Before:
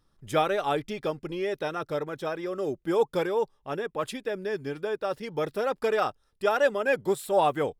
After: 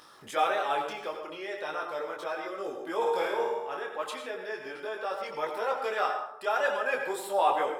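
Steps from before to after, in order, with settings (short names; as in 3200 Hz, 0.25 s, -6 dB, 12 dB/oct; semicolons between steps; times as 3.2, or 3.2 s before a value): HPF 760 Hz 12 dB/oct; 0.76–1.24 sample gate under -55.5 dBFS; 2.96–3.77 flutter echo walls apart 8.8 m, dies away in 0.81 s; plate-style reverb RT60 0.68 s, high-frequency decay 0.55×, pre-delay 75 ms, DRR 7 dB; upward compressor, threshold -36 dBFS; tilt -1.5 dB/oct; transient shaper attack -2 dB, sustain +3 dB; 5.3–5.79 bell 980 Hz +9 dB 0.23 oct; detuned doubles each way 13 cents; gain +4.5 dB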